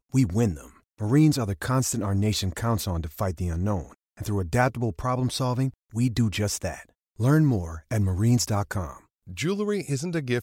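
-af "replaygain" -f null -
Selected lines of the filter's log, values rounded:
track_gain = +6.4 dB
track_peak = 0.271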